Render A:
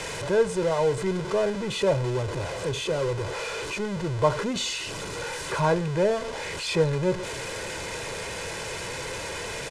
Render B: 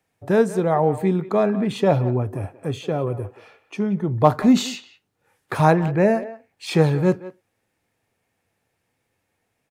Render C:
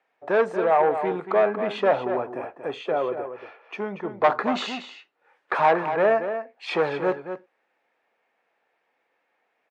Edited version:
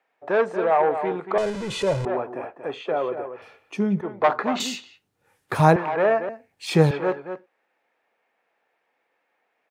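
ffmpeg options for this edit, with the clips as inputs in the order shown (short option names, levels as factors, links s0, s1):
-filter_complex "[1:a]asplit=3[s0][s1][s2];[2:a]asplit=5[s3][s4][s5][s6][s7];[s3]atrim=end=1.382[s8];[0:a]atrim=start=1.378:end=2.052[s9];[s4]atrim=start=2.048:end=3.422[s10];[s0]atrim=start=3.418:end=4.012[s11];[s5]atrim=start=4.008:end=4.602[s12];[s1]atrim=start=4.598:end=5.762[s13];[s6]atrim=start=5.758:end=6.292[s14];[s2]atrim=start=6.288:end=6.912[s15];[s7]atrim=start=6.908[s16];[s8][s9]acrossfade=d=0.004:c1=hsin:c2=hsin[s17];[s17][s10]acrossfade=d=0.004:c1=hsin:c2=hsin[s18];[s18][s11]acrossfade=d=0.004:c1=hsin:c2=hsin[s19];[s19][s12]acrossfade=d=0.004:c1=hsin:c2=hsin[s20];[s20][s13]acrossfade=d=0.004:c1=hsin:c2=hsin[s21];[s21][s14]acrossfade=d=0.004:c1=hsin:c2=hsin[s22];[s22][s15]acrossfade=d=0.004:c1=hsin:c2=hsin[s23];[s23][s16]acrossfade=d=0.004:c1=hsin:c2=hsin"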